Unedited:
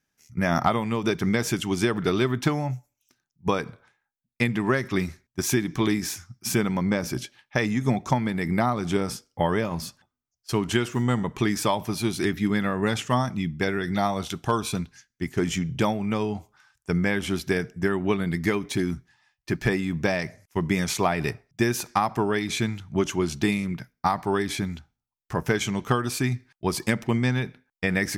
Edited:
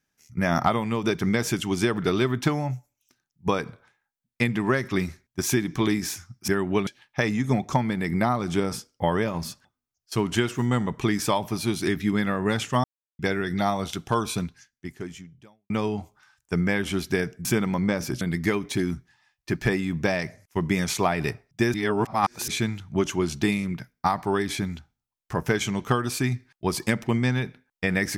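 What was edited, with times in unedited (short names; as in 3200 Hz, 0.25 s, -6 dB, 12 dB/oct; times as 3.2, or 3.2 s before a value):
6.48–7.24 swap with 17.82–18.21
13.21–13.56 mute
14.83–16.07 fade out quadratic
21.74–22.48 reverse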